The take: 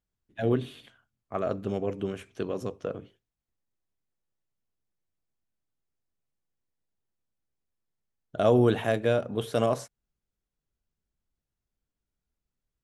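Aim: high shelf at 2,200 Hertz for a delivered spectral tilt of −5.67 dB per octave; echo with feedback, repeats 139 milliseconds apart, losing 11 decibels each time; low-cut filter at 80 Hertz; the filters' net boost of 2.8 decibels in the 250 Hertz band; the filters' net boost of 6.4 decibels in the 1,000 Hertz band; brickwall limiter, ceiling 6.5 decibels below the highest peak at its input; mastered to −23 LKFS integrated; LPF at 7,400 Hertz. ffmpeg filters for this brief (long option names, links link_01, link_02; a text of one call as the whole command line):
ffmpeg -i in.wav -af "highpass=80,lowpass=7400,equalizer=frequency=250:width_type=o:gain=3,equalizer=frequency=1000:width_type=o:gain=8.5,highshelf=frequency=2200:gain=3,alimiter=limit=-13.5dB:level=0:latency=1,aecho=1:1:139|278|417:0.282|0.0789|0.0221,volume=4.5dB" out.wav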